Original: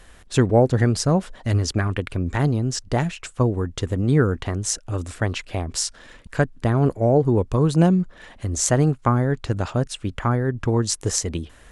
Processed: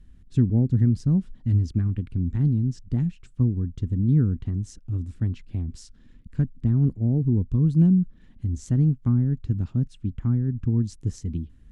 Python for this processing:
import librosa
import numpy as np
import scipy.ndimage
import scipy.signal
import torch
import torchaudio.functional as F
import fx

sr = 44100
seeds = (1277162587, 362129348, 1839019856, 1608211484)

y = fx.curve_eq(x, sr, hz=(240.0, 590.0, 3400.0, 5000.0, 11000.0), db=(0, -27, -21, -22, -26))